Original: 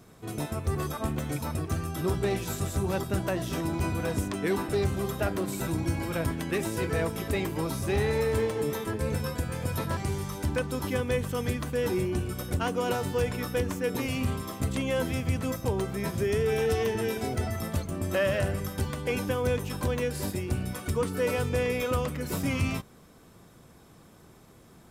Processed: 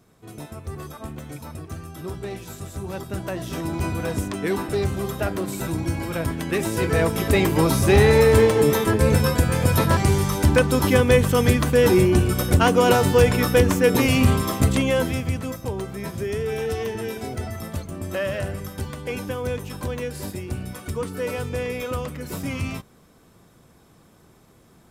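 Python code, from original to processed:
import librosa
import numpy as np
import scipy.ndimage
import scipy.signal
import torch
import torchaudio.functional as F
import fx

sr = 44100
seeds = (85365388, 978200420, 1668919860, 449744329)

y = fx.gain(x, sr, db=fx.line((2.66, -4.5), (3.8, 3.5), (6.25, 3.5), (7.59, 12.0), (14.56, 12.0), (15.55, 0.0)))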